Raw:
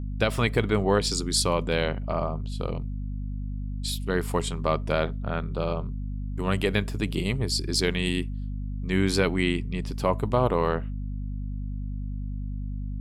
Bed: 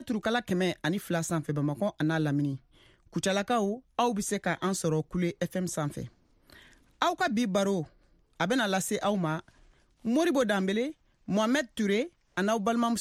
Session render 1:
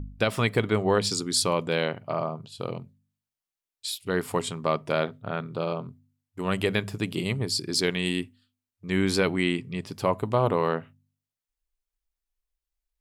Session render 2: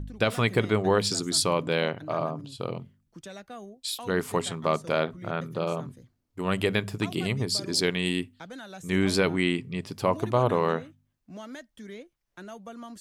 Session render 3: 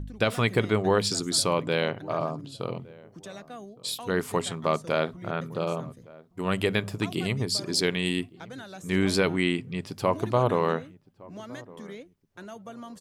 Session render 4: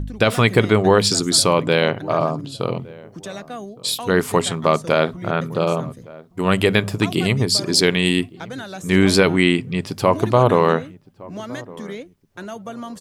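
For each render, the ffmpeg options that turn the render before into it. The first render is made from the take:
-af "bandreject=f=50:t=h:w=4,bandreject=f=100:t=h:w=4,bandreject=f=150:t=h:w=4,bandreject=f=200:t=h:w=4,bandreject=f=250:t=h:w=4"
-filter_complex "[1:a]volume=0.178[s0];[0:a][s0]amix=inputs=2:normalize=0"
-filter_complex "[0:a]asplit=2[s0][s1];[s1]adelay=1163,lowpass=f=910:p=1,volume=0.0891,asplit=2[s2][s3];[s3]adelay=1163,lowpass=f=910:p=1,volume=0.32[s4];[s0][s2][s4]amix=inputs=3:normalize=0"
-af "volume=2.99,alimiter=limit=0.708:level=0:latency=1"

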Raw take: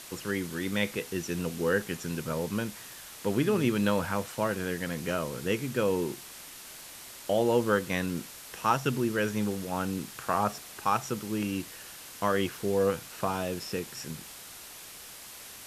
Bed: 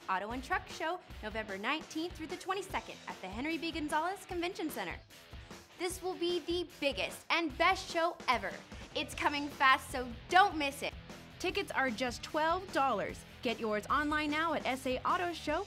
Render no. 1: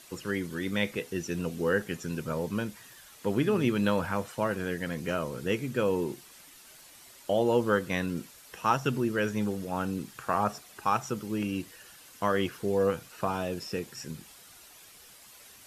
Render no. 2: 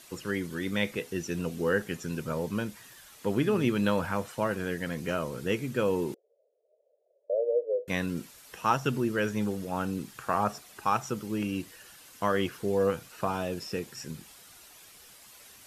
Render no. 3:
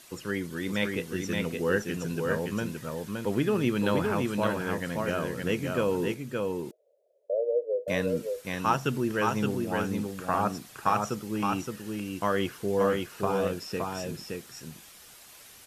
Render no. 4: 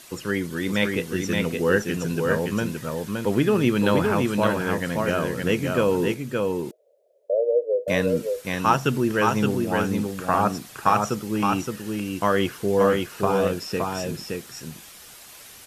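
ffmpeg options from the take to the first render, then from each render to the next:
-af "afftdn=nr=9:nf=-46"
-filter_complex "[0:a]asettb=1/sr,asplit=3[s0][s1][s2];[s0]atrim=end=6.144[s3];[s1]atrim=start=6.14:end=7.88,asetpts=PTS-STARTPTS,afade=t=in:d=0.004:c=qsin,afade=t=out:st=1.736:d=0.004:c=qsin,asuperpass=centerf=520:order=8:qfactor=2.5[s4];[s2]atrim=start=7.876[s5];[s3][s4]acrossfade=d=0.004:c1=hsin:c2=qsin[s6];[s6][s5]acrossfade=d=0.004:c1=qsin:c2=hsin"
-af "aecho=1:1:569:0.668"
-af "volume=2"

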